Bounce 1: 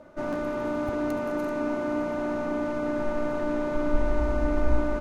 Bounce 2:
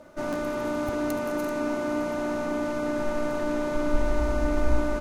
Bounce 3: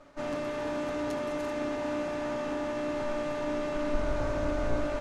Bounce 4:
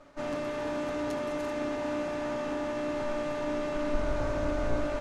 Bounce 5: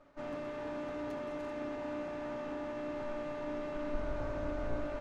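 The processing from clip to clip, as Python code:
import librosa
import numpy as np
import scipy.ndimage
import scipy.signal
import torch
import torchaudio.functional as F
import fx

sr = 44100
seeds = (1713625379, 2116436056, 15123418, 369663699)

y1 = fx.high_shelf(x, sr, hz=4000.0, db=12.0)
y2 = fx.lower_of_two(y1, sr, delay_ms=7.0)
y2 = scipy.signal.sosfilt(scipy.signal.butter(2, 7600.0, 'lowpass', fs=sr, output='sos'), y2)
y2 = fx.doubler(y2, sr, ms=22.0, db=-12)
y2 = y2 * 10.0 ** (-3.5 / 20.0)
y3 = y2
y4 = fx.tracing_dist(y3, sr, depth_ms=0.034)
y4 = fx.high_shelf(y4, sr, hz=5400.0, db=-12.0)
y4 = y4 * 10.0 ** (-7.0 / 20.0)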